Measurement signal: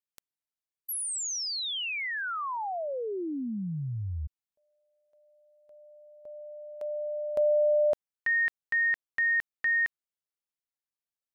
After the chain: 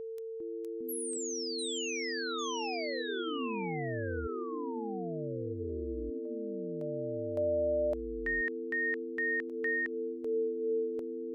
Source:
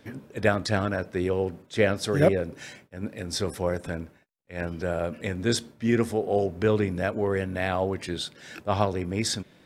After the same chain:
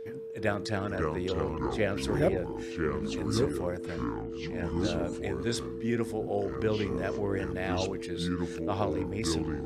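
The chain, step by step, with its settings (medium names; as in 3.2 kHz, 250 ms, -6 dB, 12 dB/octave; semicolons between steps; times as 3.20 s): whistle 450 Hz -31 dBFS; ever faster or slower copies 403 ms, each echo -5 st, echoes 2; trim -7 dB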